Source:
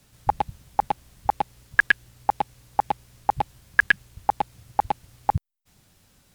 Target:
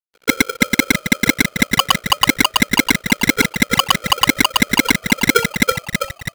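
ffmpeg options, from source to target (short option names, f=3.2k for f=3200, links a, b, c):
-filter_complex "[0:a]lowpass=2.5k,equalizer=f=410:w=1.6:g=-12.5,bandreject=f=50:t=h:w=6,bandreject=f=100:t=h:w=6,asplit=2[a][b];[b]aeval=exprs='clip(val(0),-1,0.0631)':c=same,volume=-8dB[c];[a][c]amix=inputs=2:normalize=0,acrusher=bits=4:mode=log:mix=0:aa=0.000001,afreqshift=370,aresample=8000,aeval=exprs='sgn(val(0))*max(abs(val(0))-0.00355,0)':c=same,aresample=44100,asplit=8[d][e][f][g][h][i][j][k];[e]adelay=327,afreqshift=-42,volume=-5.5dB[l];[f]adelay=654,afreqshift=-84,volume=-11dB[m];[g]adelay=981,afreqshift=-126,volume=-16.5dB[n];[h]adelay=1308,afreqshift=-168,volume=-22dB[o];[i]adelay=1635,afreqshift=-210,volume=-27.6dB[p];[j]adelay=1962,afreqshift=-252,volume=-33.1dB[q];[k]adelay=2289,afreqshift=-294,volume=-38.6dB[r];[d][l][m][n][o][p][q][r]amix=inputs=8:normalize=0,alimiter=level_in=13.5dB:limit=-1dB:release=50:level=0:latency=1,aeval=exprs='val(0)*sgn(sin(2*PI*930*n/s))':c=same,volume=-1dB"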